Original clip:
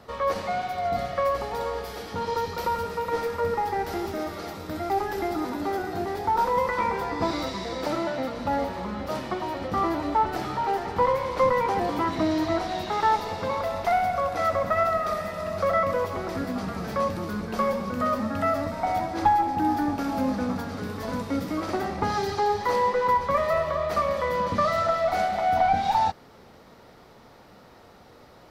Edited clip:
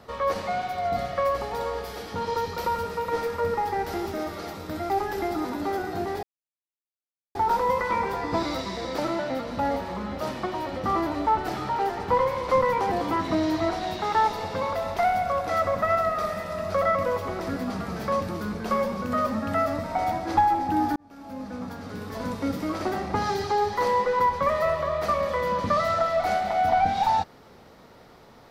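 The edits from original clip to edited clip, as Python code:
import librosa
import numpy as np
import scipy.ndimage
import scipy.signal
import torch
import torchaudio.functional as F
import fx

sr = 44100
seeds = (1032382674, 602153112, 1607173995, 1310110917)

y = fx.edit(x, sr, fx.insert_silence(at_s=6.23, length_s=1.12),
    fx.fade_in_span(start_s=19.84, length_s=1.45), tone=tone)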